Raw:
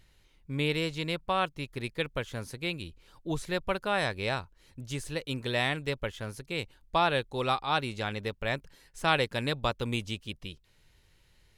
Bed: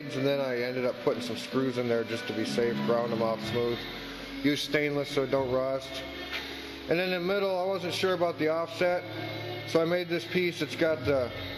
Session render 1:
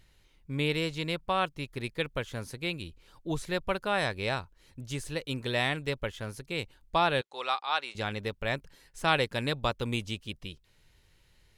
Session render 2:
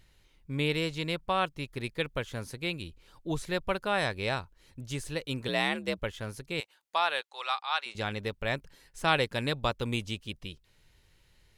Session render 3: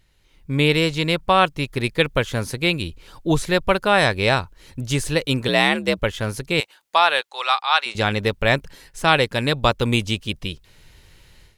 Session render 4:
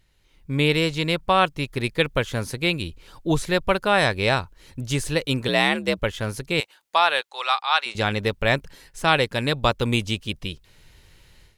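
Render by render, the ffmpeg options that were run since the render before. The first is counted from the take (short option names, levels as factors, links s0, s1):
-filter_complex "[0:a]asettb=1/sr,asplit=3[s0][s1][s2];[s0]atrim=end=7.214[s3];[s1]atrim=start=7.21:end=7.95,asetpts=PTS-STARTPTS,afade=t=in:d=0.004:c=qsin,afade=t=out:st=0.736:d=0.004:c=qsin,highpass=740,lowpass=7100[s4];[s2]atrim=start=7.946[s5];[s3][s4]acrossfade=d=0.004:c1=hsin:c2=qsin[s6];[s6][s5]acrossfade=d=0.004:c1=qsin:c2=hsin"
-filter_complex "[0:a]asettb=1/sr,asplit=3[s0][s1][s2];[s0]atrim=end=5.484[s3];[s1]atrim=start=5.48:end=5.99,asetpts=PTS-STARTPTS,afade=t=in:d=0.004:c=qsin,afade=t=out:st=0.506:d=0.004:c=qsin,afreqshift=59[s4];[s2]atrim=start=5.986[s5];[s3][s4]acrossfade=d=0.004:c1=hsin:c2=qsin[s6];[s6][s5]acrossfade=d=0.004:c1=qsin:c2=hsin,asettb=1/sr,asplit=3[s7][s8][s9];[s7]atrim=end=6.604[s10];[s8]atrim=start=6.6:end=7.86,asetpts=PTS-STARTPTS,afade=t=in:d=0.004:c=qsin,afade=t=out:st=1.256:d=0.004:c=qsin,highpass=780[s11];[s9]atrim=start=7.856[s12];[s10][s11]acrossfade=d=0.004:c1=hsin:c2=qsin[s13];[s13][s12]acrossfade=d=0.004:c1=qsin:c2=hsin"
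-af "dynaudnorm=f=220:g=3:m=5.01"
-af "volume=0.75"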